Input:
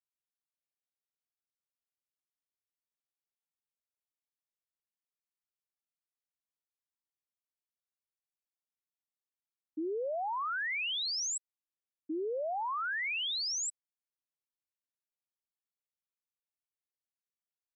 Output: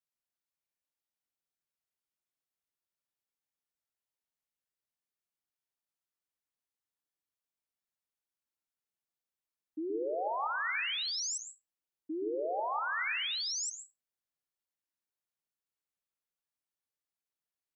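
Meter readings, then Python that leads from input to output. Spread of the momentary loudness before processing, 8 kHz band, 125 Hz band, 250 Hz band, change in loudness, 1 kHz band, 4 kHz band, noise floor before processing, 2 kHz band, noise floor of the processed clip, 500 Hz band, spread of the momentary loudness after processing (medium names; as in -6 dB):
7 LU, -1.0 dB, no reading, +1.0 dB, 0.0 dB, +0.5 dB, -1.0 dB, under -85 dBFS, 0.0 dB, under -85 dBFS, +0.5 dB, 10 LU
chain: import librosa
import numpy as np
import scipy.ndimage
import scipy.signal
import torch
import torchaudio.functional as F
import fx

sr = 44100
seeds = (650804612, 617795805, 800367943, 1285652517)

y = fx.rev_plate(x, sr, seeds[0], rt60_s=0.72, hf_ratio=0.25, predelay_ms=115, drr_db=3.0)
y = F.gain(torch.from_numpy(y), -1.5).numpy()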